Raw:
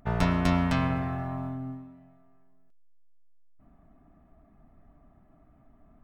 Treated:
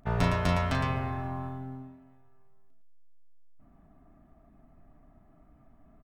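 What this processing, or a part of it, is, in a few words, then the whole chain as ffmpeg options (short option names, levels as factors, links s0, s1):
slapback doubling: -filter_complex "[0:a]asplit=3[s0][s1][s2];[s1]adelay=36,volume=0.422[s3];[s2]adelay=112,volume=0.501[s4];[s0][s3][s4]amix=inputs=3:normalize=0,volume=0.841"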